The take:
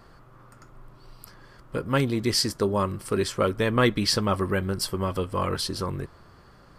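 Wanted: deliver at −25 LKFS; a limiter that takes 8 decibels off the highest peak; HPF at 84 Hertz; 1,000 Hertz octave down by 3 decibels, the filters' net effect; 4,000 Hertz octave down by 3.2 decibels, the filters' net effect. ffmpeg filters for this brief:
ffmpeg -i in.wav -af "highpass=84,equalizer=frequency=1000:width_type=o:gain=-3.5,equalizer=frequency=4000:width_type=o:gain=-4,volume=4dB,alimiter=limit=-13.5dB:level=0:latency=1" out.wav

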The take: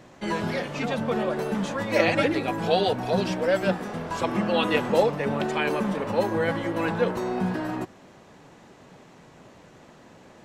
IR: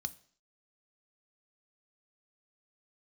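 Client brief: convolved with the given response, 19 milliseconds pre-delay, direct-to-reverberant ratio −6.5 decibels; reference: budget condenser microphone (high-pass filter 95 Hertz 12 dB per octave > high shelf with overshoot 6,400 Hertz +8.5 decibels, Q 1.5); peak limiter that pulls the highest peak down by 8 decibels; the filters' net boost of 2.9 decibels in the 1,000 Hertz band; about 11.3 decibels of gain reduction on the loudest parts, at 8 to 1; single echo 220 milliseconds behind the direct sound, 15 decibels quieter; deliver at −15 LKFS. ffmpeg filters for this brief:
-filter_complex "[0:a]equalizer=frequency=1000:width_type=o:gain=4,acompressor=threshold=-26dB:ratio=8,alimiter=limit=-23dB:level=0:latency=1,aecho=1:1:220:0.178,asplit=2[link_01][link_02];[1:a]atrim=start_sample=2205,adelay=19[link_03];[link_02][link_03]afir=irnorm=-1:irlink=0,volume=8.5dB[link_04];[link_01][link_04]amix=inputs=2:normalize=0,highpass=95,highshelf=frequency=6400:width_type=q:width=1.5:gain=8.5,volume=9.5dB"

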